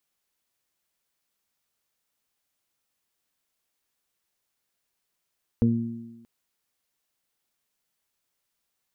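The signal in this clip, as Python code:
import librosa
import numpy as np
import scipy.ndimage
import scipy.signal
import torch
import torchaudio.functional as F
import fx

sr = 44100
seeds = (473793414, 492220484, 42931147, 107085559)

y = fx.additive(sr, length_s=0.63, hz=116.0, level_db=-20.5, upper_db=(3.5, -13, -6.0), decay_s=0.94, upper_decays_s=(1.15, 1.19, 0.22))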